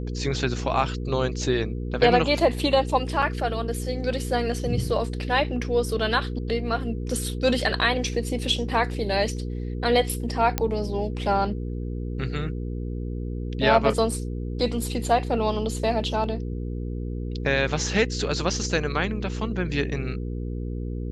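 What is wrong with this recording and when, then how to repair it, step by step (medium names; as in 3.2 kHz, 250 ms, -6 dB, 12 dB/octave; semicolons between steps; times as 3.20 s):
hum 60 Hz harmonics 8 -30 dBFS
3.22–3.23 s: dropout 5.7 ms
10.58 s: pop -7 dBFS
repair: de-click; de-hum 60 Hz, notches 8; interpolate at 3.22 s, 5.7 ms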